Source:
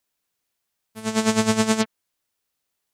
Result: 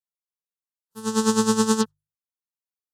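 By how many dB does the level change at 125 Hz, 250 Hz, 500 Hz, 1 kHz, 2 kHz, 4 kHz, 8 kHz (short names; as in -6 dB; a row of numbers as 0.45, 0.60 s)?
-2.5, +0.5, +0.5, +0.5, -6.0, -2.0, +1.0 dB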